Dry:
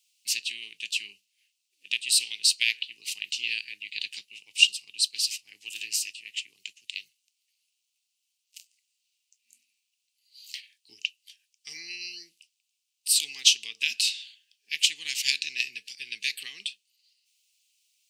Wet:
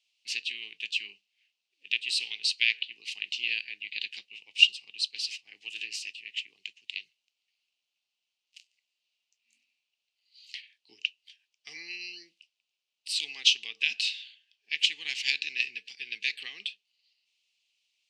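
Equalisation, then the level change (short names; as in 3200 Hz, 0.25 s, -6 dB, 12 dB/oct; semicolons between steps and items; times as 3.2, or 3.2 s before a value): HPF 230 Hz 6 dB/oct; LPF 3300 Hz 12 dB/oct; bell 660 Hz +5.5 dB 0.92 oct; +1.5 dB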